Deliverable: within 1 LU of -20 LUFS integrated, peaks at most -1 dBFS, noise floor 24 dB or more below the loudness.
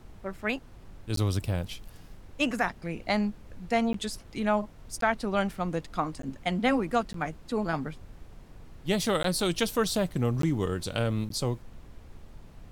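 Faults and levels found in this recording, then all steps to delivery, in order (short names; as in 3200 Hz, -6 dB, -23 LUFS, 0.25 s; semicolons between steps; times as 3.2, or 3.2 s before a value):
dropouts 8; longest dropout 13 ms; noise floor -50 dBFS; noise floor target -54 dBFS; loudness -30.0 LUFS; peak -12.0 dBFS; loudness target -20.0 LUFS
-> interpolate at 1.16/3.93/5.01/6.22/7.13/9.23/10.42/11.29, 13 ms; noise print and reduce 6 dB; gain +10 dB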